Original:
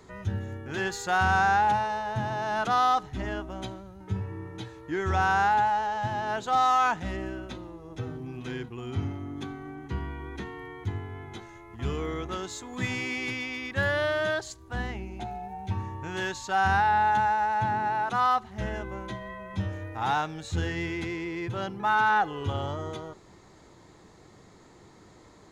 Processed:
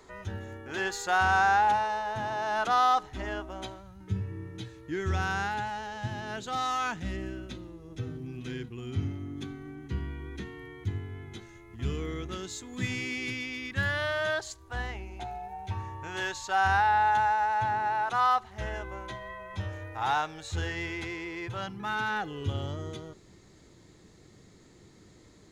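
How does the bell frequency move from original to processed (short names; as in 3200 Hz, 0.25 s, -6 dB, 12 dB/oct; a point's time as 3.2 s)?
bell -11 dB 1.5 oct
3.64 s 140 Hz
4.11 s 860 Hz
13.62 s 860 Hz
14.38 s 200 Hz
21.47 s 200 Hz
21.91 s 920 Hz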